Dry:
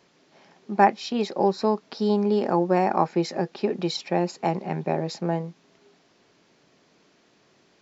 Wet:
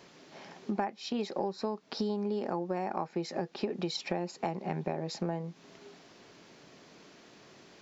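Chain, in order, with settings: compressor 8:1, threshold -36 dBFS, peak gain reduction 24 dB; gain +5.5 dB

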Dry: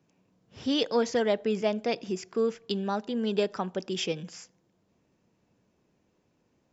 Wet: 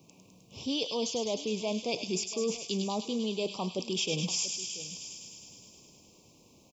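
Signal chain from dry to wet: reverse; compressor 6:1, threshold -39 dBFS, peak gain reduction 17 dB; reverse; high shelf 3200 Hz +9 dB; echo 0.684 s -17.5 dB; in parallel at +0.5 dB: limiter -34 dBFS, peak gain reduction 9.5 dB; on the sum: Chebyshev band-stop 1100–2400 Hz, order 3; thin delay 0.103 s, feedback 80%, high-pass 2500 Hz, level -5 dB; gain +3.5 dB

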